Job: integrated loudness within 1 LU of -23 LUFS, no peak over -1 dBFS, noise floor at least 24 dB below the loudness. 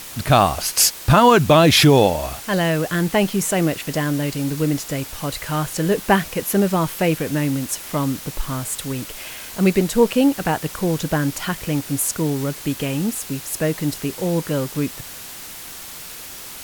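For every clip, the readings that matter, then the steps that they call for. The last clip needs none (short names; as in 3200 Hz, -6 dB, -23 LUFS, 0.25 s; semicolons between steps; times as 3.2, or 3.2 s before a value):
noise floor -36 dBFS; noise floor target -44 dBFS; loudness -19.5 LUFS; peak -2.0 dBFS; loudness target -23.0 LUFS
-> noise print and reduce 8 dB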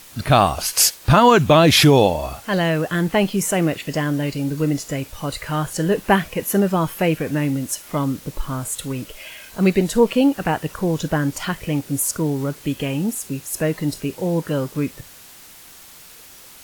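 noise floor -44 dBFS; loudness -19.5 LUFS; peak -2.0 dBFS; loudness target -23.0 LUFS
-> gain -3.5 dB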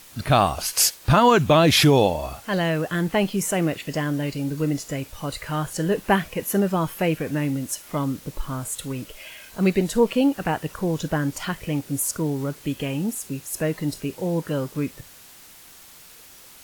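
loudness -23.0 LUFS; peak -5.5 dBFS; noise floor -47 dBFS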